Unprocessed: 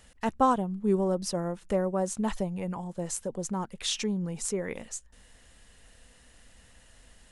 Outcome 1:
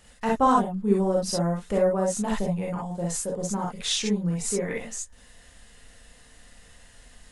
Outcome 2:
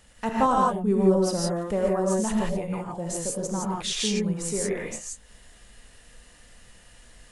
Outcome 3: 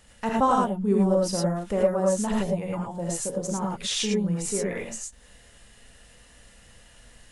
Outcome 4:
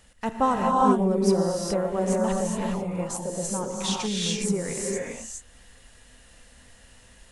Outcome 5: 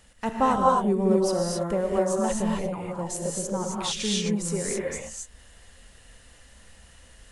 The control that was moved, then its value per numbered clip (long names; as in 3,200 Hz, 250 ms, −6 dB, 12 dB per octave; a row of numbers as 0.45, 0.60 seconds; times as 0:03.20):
reverb whose tail is shaped and stops, gate: 80, 190, 130, 440, 290 milliseconds